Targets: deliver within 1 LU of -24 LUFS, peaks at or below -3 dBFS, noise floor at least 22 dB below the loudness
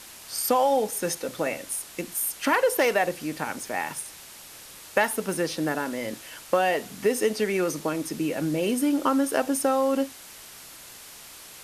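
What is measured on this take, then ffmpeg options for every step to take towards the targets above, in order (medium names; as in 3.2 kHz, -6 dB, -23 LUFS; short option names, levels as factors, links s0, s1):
noise floor -45 dBFS; noise floor target -48 dBFS; loudness -26.0 LUFS; peak level -7.0 dBFS; loudness target -24.0 LUFS
-> -af "afftdn=nr=6:nf=-45"
-af "volume=1.26"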